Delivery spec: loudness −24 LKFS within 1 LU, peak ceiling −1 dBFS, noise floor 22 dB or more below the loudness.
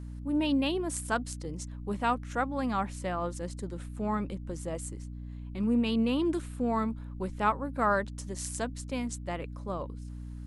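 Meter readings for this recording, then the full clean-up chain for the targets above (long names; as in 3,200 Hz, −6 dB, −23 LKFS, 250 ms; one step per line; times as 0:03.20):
mains hum 60 Hz; hum harmonics up to 300 Hz; level of the hum −38 dBFS; integrated loudness −32.0 LKFS; sample peak −13.0 dBFS; target loudness −24.0 LKFS
→ mains-hum notches 60/120/180/240/300 Hz
level +8 dB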